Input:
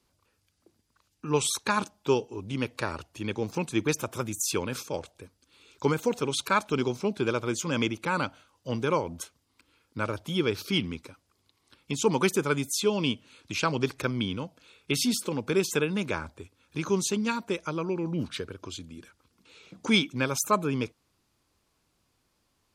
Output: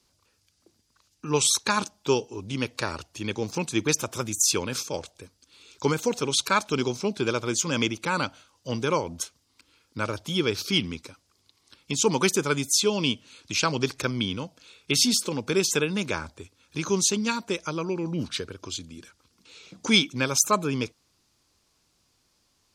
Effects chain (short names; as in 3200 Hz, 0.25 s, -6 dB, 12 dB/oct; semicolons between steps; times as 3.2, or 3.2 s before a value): bell 5600 Hz +8.5 dB 1.4 oct; gain +1 dB